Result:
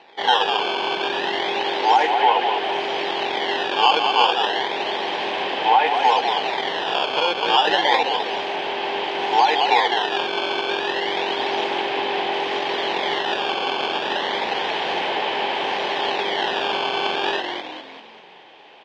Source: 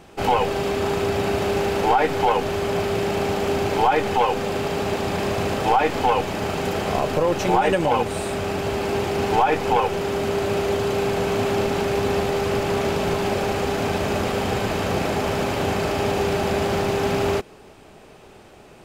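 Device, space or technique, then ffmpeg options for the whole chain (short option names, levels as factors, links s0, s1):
circuit-bent sampling toy: -filter_complex "[0:a]asettb=1/sr,asplit=3[s0][s1][s2];[s0]atrim=end=1.604[s3];[s1]atrim=start=1.6:end=2.6,asetpts=PTS-STARTPTS,afade=t=in:d=0.004:c=qsin,afade=t=out:st=0.996:d=0.004:c=qsin,highpass=f=140:w=0.5412,highpass=f=140:w=1.3066[s4];[s2]atrim=start=2.596[s5];[s3][s4]acrossfade=d=0.004:c1=hsin:c2=qsin[s6];[s6][s5]acrossfade=d=0.004:c1=qsin:c2=hsin,asplit=8[s7][s8][s9][s10][s11][s12][s13][s14];[s8]adelay=201,afreqshift=-44,volume=0.562[s15];[s9]adelay=402,afreqshift=-88,volume=0.302[s16];[s10]adelay=603,afreqshift=-132,volume=0.164[s17];[s11]adelay=804,afreqshift=-176,volume=0.0881[s18];[s12]adelay=1005,afreqshift=-220,volume=0.0479[s19];[s13]adelay=1206,afreqshift=-264,volume=0.0257[s20];[s14]adelay=1407,afreqshift=-308,volume=0.014[s21];[s7][s15][s16][s17][s18][s19][s20][s21]amix=inputs=8:normalize=0,acrusher=samples=13:mix=1:aa=0.000001:lfo=1:lforange=20.8:lforate=0.31,highpass=590,equalizer=f=620:t=q:w=4:g=-4,equalizer=f=890:t=q:w=4:g=6,equalizer=f=1300:t=q:w=4:g=-10,equalizer=f=1800:t=q:w=4:g=3,equalizer=f=3200:t=q:w=4:g=8,lowpass=f=4200:w=0.5412,lowpass=f=4200:w=1.3066,volume=1.26"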